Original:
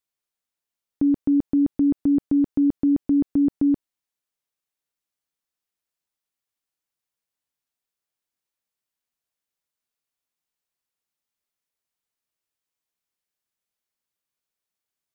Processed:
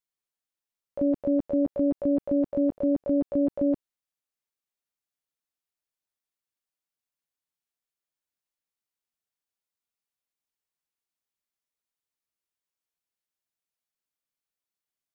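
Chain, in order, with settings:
pitch-shifted copies added +12 semitones −5 dB
level −6 dB

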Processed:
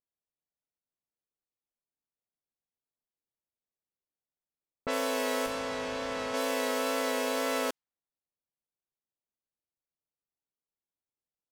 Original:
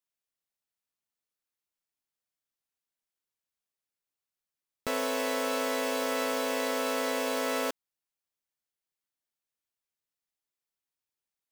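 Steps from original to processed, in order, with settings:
tape wow and flutter 23 cents
0:05.46–0:06.34: tube saturation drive 27 dB, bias 0.7
low-pass that shuts in the quiet parts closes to 720 Hz, open at −27 dBFS

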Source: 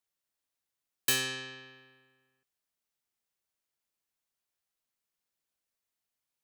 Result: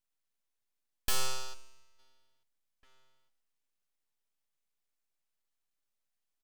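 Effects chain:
notch filter 3,800 Hz, Q 5.5
gain on a spectral selection 0:01.54–0:01.99, 470–3,700 Hz −12 dB
octave-band graphic EQ 125/250/500/1,000/2,000/4,000 Hz −6/−8/−3/+8/+4/+10 dB
tube saturation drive 22 dB, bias 0.65
slap from a distant wall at 300 metres, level −26 dB
full-wave rectification
convolution reverb RT60 0.80 s, pre-delay 7 ms, DRR 17.5 dB

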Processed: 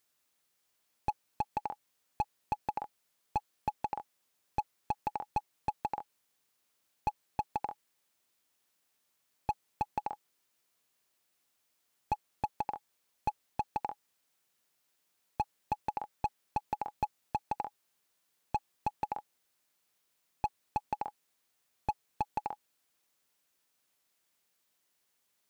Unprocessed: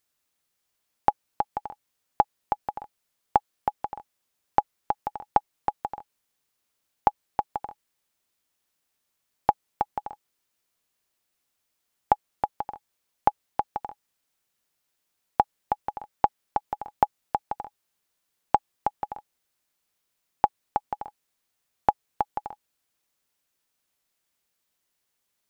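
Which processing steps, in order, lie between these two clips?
high-pass filter 120 Hz 6 dB per octave
slew-rate limiting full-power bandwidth 39 Hz
level +1 dB

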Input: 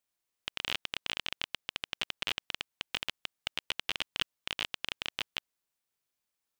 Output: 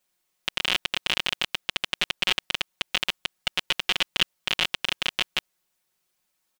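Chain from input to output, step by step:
comb filter 5.5 ms, depth 99%
level +7 dB

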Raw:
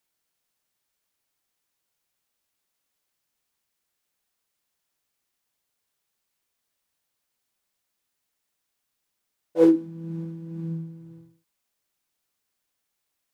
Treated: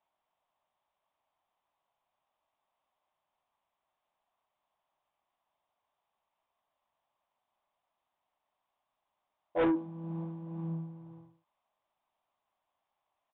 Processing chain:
flat-topped bell 820 Hz +14.5 dB 1.2 octaves
soft clipping −19 dBFS, distortion −7 dB
downsampling to 8,000 Hz
level −5 dB

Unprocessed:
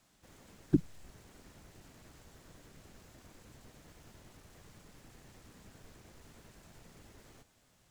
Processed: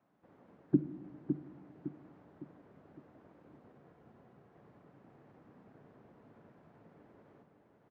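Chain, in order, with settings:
high-pass filter 170 Hz 12 dB per octave
0:03.72–0:04.56: notch comb filter 300 Hz
low-pass filter 1,100 Hz 12 dB per octave
repeating echo 558 ms, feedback 42%, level −6.5 dB
rectangular room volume 610 cubic metres, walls mixed, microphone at 0.33 metres

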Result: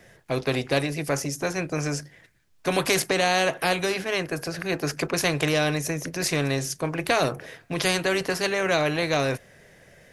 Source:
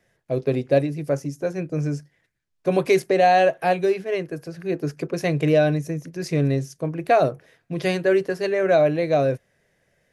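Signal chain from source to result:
every bin compressed towards the loudest bin 2 to 1

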